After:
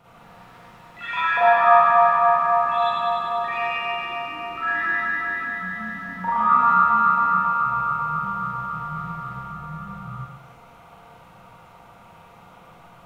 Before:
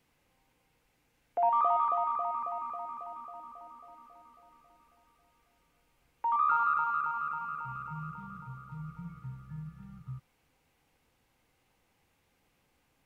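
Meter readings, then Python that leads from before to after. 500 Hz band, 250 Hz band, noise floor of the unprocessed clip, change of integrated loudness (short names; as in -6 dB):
+16.0 dB, +13.0 dB, -74 dBFS, +11.0 dB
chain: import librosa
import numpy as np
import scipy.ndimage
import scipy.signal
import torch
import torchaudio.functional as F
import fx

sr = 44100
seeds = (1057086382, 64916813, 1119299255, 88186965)

y = fx.bin_compress(x, sr, power=0.6)
y = fx.echo_pitch(y, sr, ms=161, semitones=6, count=3, db_per_echo=-6.0)
y = fx.rev_schroeder(y, sr, rt60_s=0.95, comb_ms=33, drr_db=-8.0)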